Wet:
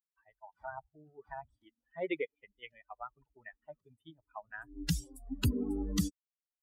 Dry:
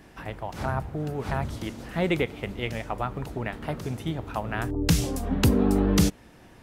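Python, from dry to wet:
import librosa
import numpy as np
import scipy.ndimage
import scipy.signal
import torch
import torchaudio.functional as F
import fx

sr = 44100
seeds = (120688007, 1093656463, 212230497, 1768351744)

y = fx.bin_expand(x, sr, power=3.0)
y = fx.peak_eq(y, sr, hz=800.0, db=-4.0, octaves=1.8, at=(2.35, 4.54))
y = y * librosa.db_to_amplitude(-5.5)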